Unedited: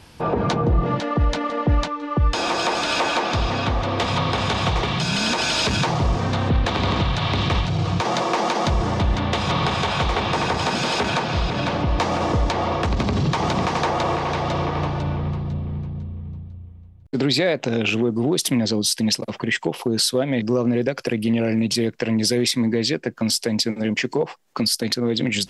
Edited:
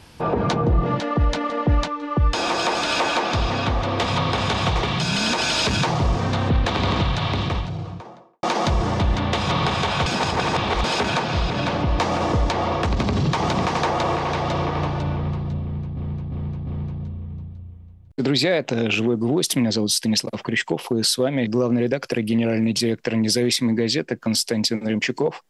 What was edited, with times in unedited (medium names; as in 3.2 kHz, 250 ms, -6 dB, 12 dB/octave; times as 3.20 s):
7.03–8.43 s: studio fade out
10.06–10.84 s: reverse
15.62–15.97 s: loop, 4 plays